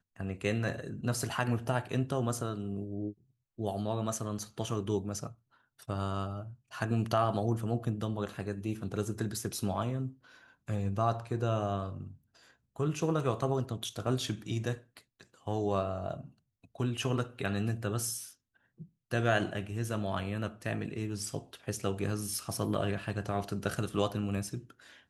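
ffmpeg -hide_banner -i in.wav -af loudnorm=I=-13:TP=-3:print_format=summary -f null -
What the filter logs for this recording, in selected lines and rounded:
Input Integrated:    -34.2 LUFS
Input True Peak:     -14.0 dBTP
Input LRA:             2.5 LU
Input Threshold:     -44.8 LUFS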